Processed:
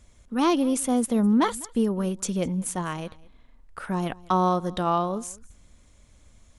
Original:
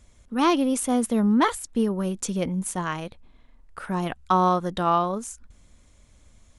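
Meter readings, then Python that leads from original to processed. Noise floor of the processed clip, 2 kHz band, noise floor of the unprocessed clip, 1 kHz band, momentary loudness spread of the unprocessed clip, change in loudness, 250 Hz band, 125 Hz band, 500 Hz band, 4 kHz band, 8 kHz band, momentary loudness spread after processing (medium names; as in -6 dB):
-56 dBFS, -4.0 dB, -56 dBFS, -2.5 dB, 12 LU, -1.0 dB, 0.0 dB, 0.0 dB, -0.5 dB, -1.5 dB, 0.0 dB, 12 LU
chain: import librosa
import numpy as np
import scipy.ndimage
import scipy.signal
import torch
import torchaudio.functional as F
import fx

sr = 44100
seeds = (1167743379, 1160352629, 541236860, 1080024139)

p1 = fx.dynamic_eq(x, sr, hz=1700.0, q=0.74, threshold_db=-34.0, ratio=4.0, max_db=-5)
y = p1 + fx.echo_single(p1, sr, ms=204, db=-23.0, dry=0)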